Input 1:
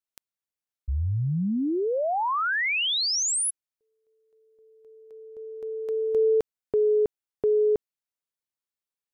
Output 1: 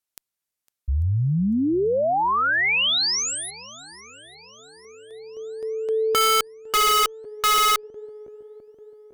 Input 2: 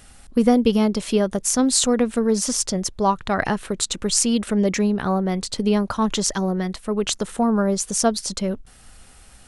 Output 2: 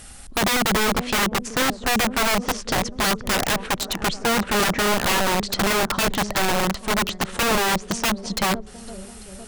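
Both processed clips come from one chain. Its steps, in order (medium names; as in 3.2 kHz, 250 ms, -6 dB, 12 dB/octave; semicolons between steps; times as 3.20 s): low-pass that closes with the level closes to 750 Hz, closed at -15.5 dBFS; treble shelf 6.4 kHz +6 dB; in parallel at -3.5 dB: one-sided clip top -21 dBFS; on the sum: shuffle delay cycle 843 ms, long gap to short 1.5:1, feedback 44%, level -21 dB; integer overflow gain 15.5 dB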